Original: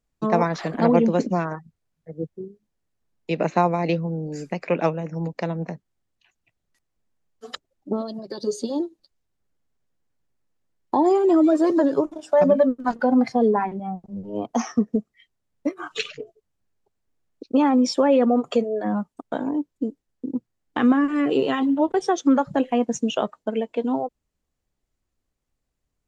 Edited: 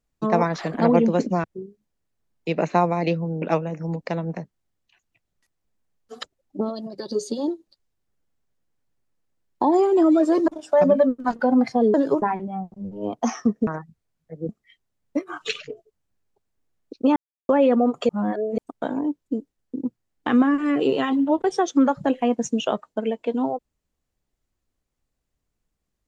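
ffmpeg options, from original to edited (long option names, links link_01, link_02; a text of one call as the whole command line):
ffmpeg -i in.wav -filter_complex "[0:a]asplit=12[link_01][link_02][link_03][link_04][link_05][link_06][link_07][link_08][link_09][link_10][link_11][link_12];[link_01]atrim=end=1.442[link_13];[link_02]atrim=start=2.258:end=4.242[link_14];[link_03]atrim=start=4.738:end=11.802[link_15];[link_04]atrim=start=12.078:end=13.542[link_16];[link_05]atrim=start=11.798:end=12.082[link_17];[link_06]atrim=start=13.538:end=14.992[link_18];[link_07]atrim=start=1.438:end=2.262[link_19];[link_08]atrim=start=14.988:end=17.66,asetpts=PTS-STARTPTS,afade=type=out:start_time=2.668:duration=0.004:curve=hsin[link_20];[link_09]atrim=start=17.66:end=17.99,asetpts=PTS-STARTPTS,volume=0[link_21];[link_10]atrim=start=17.99:end=18.592,asetpts=PTS-STARTPTS,afade=type=in:duration=0.004:curve=hsin[link_22];[link_11]atrim=start=18.588:end=19.082,asetpts=PTS-STARTPTS,areverse[link_23];[link_12]atrim=start=19.078[link_24];[link_13][link_14]acrossfade=duration=0.004:curve1=hsin:curve2=hsin[link_25];[link_25][link_15]acrossfade=duration=0.004:curve1=hsin:curve2=hsin[link_26];[link_26][link_16]acrossfade=duration=0.004:curve1=hsin:curve2=hsin[link_27];[link_27][link_17]acrossfade=duration=0.004:curve1=hsin:curve2=hsin[link_28];[link_28][link_18]acrossfade=duration=0.004:curve1=hsin:curve2=hsin[link_29];[link_29][link_19]acrossfade=duration=0.004:curve1=hsin:curve2=hsin[link_30];[link_20][link_21][link_22]concat=n=3:v=0:a=1[link_31];[link_30][link_31]acrossfade=duration=0.004:curve1=hsin:curve2=hsin[link_32];[link_32][link_23]acrossfade=duration=0.004:curve1=hsin:curve2=hsin[link_33];[link_33][link_24]acrossfade=duration=0.004:curve1=hsin:curve2=hsin" out.wav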